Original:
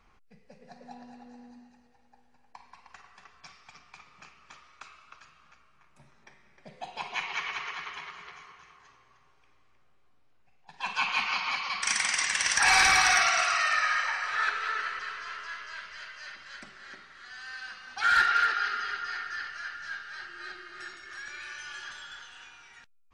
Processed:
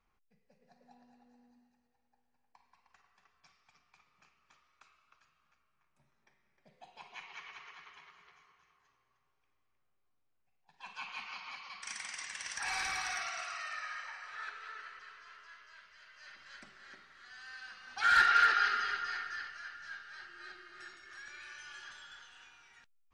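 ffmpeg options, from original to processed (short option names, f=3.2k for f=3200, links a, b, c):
-af "volume=0.5dB,afade=t=in:st=16.03:d=0.43:silence=0.398107,afade=t=in:st=17.71:d=0.87:silence=0.398107,afade=t=out:st=18.58:d=1.02:silence=0.375837"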